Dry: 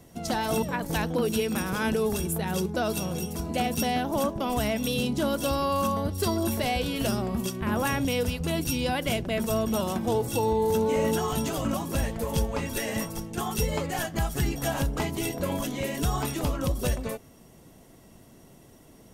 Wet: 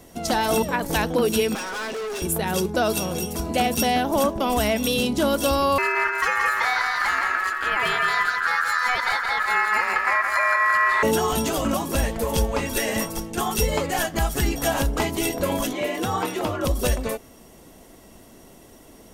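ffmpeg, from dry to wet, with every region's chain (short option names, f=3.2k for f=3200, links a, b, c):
-filter_complex "[0:a]asettb=1/sr,asplit=3[a][b][c];[a]atrim=end=1.554[d];[b]atrim=start=1.55:end=2.22,asetpts=PTS-STARTPTS,afade=t=in:d=0.004:c=qsin,afade=t=out:st=0.666:d=0.004:c=qsin,highpass=390,lowpass=6.3k,aecho=1:1:7.5:0.55,atrim=end_sample=29547,asoftclip=type=hard:threshold=-34dB[e];[c]atrim=start=2.216[f];[d][e]acrossfade=d=0.004:c1=hsin:c2=qsin[g];[g][f]acrossfade=d=0.004:c1=qsin:c2=hsin,asettb=1/sr,asplit=3[h][i][j];[h]atrim=end=5.784[k];[i]atrim=start=5.78:end=11.03,asetpts=PTS-STARTPTS,afade=t=in:d=0.004:c=qsin,afade=t=out:st=5.246:d=0.004:c=qsin,lowpass=f=2.7k:p=1,aeval=exprs='val(0)*sin(2*PI*1500*n/s)':c=same,aecho=1:1:170|340|510|680|850:0.531|0.223|0.0936|0.0393|0.0165,atrim=end_sample=231525[l];[j]atrim=start=11.026[m];[k][l]acrossfade=d=0.004:c1=hsin:c2=qsin[n];[n][m]acrossfade=d=0.004:c1=qsin:c2=hsin,asettb=1/sr,asplit=3[o][p][q];[o]atrim=end=15.734[r];[p]atrim=start=15.73:end=16.65,asetpts=PTS-STARTPTS,afade=t=in:d=0.004:c=qsin,afade=t=out:st=0.916:d=0.004:c=qsin,bass=f=250:g=-5,treble=f=4k:g=-9,afreqshift=45,highpass=57[s];[q]atrim=start=16.646[t];[r][s]acrossfade=d=0.004:c1=hsin:c2=qsin[u];[u][t]acrossfade=d=0.004:c1=qsin:c2=hsin,acontrast=74,equalizer=f=130:t=o:w=1.1:g=-9.5"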